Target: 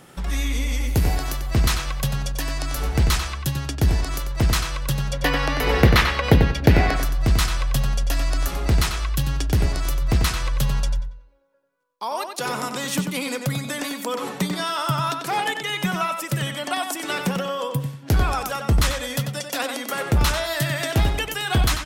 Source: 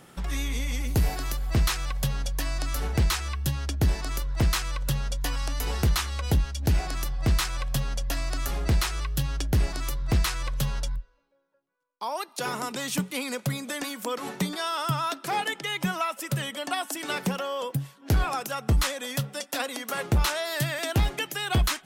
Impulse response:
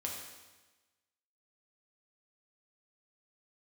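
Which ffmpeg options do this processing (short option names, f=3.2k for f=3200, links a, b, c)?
-filter_complex "[0:a]asettb=1/sr,asplit=3[a][b][c];[a]atrim=end=5.134[d];[b]atrim=start=5.13:end=6.96,asetpts=PTS-STARTPTS,afade=t=in:d=0.004:c=qsin,afade=t=out:st=1.826:d=0.004:c=qsin,equalizer=f=125:t=o:w=1:g=5,equalizer=f=250:t=o:w=1:g=6,equalizer=f=500:t=o:w=1:g=10,equalizer=f=1k:t=o:w=1:g=3,equalizer=f=2k:t=o:w=1:g=11,equalizer=f=4k:t=o:w=1:g=3,equalizer=f=8k:t=o:w=1:g=-8[e];[c]atrim=start=6.956[f];[d][e]acrossfade=d=0.004:c1=hsin:c2=qsin[g];[g][f]acrossfade=d=0.004:c1=qsin:c2=hsin,asplit=2[h][i];[i]adelay=93,lowpass=f=4.8k:p=1,volume=-5.5dB,asplit=2[j][k];[k]adelay=93,lowpass=f=4.8k:p=1,volume=0.28,asplit=2[l][m];[m]adelay=93,lowpass=f=4.8k:p=1,volume=0.28,asplit=2[n][o];[o]adelay=93,lowpass=f=4.8k:p=1,volume=0.28[p];[h][j][l][n][p]amix=inputs=5:normalize=0,volume=3.5dB"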